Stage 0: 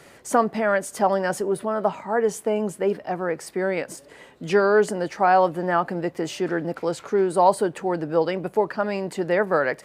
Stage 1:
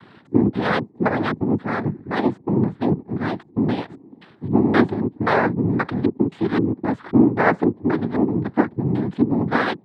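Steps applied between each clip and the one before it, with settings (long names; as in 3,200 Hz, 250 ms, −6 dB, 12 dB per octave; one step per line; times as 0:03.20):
auto-filter low-pass square 1.9 Hz 290–1,500 Hz
cochlear-implant simulation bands 6
low shelf with overshoot 390 Hz +7.5 dB, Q 1.5
level −2.5 dB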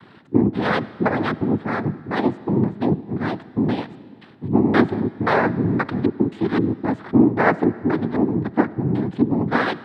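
convolution reverb RT60 2.1 s, pre-delay 25 ms, DRR 18 dB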